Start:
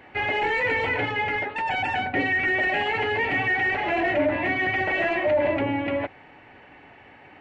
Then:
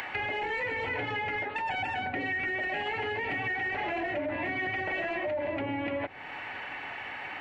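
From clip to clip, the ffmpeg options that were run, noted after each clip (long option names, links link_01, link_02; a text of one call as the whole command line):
ffmpeg -i in.wav -filter_complex "[0:a]acrossover=split=790[link_01][link_02];[link_02]acompressor=mode=upward:threshold=-27dB:ratio=2.5[link_03];[link_01][link_03]amix=inputs=2:normalize=0,alimiter=limit=-20dB:level=0:latency=1:release=169,acompressor=threshold=-29dB:ratio=6" out.wav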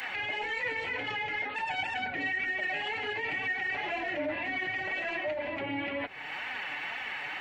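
ffmpeg -i in.wav -af "highshelf=frequency=2000:gain=11.5,alimiter=limit=-23.5dB:level=0:latency=1:release=20,flanger=delay=3.8:depth=3.1:regen=34:speed=2:shape=sinusoidal,volume=1dB" out.wav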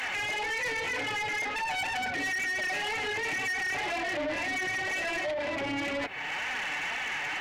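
ffmpeg -i in.wav -af "asoftclip=type=tanh:threshold=-35.5dB,volume=7dB" out.wav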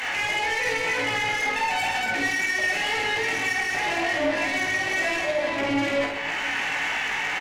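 ffmpeg -i in.wav -filter_complex "[0:a]asplit=2[link_01][link_02];[link_02]adelay=18,volume=-5dB[link_03];[link_01][link_03]amix=inputs=2:normalize=0,asplit=2[link_04][link_05];[link_05]aecho=0:1:50|130|258|462.8|790.5:0.631|0.398|0.251|0.158|0.1[link_06];[link_04][link_06]amix=inputs=2:normalize=0,volume=3dB" out.wav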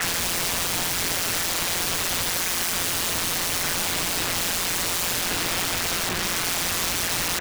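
ffmpeg -i in.wav -af "aeval=exprs='(mod(20*val(0)+1,2)-1)/20':channel_layout=same,afreqshift=-280,aeval=exprs='val(0)*sin(2*PI*87*n/s)':channel_layout=same,volume=8.5dB" out.wav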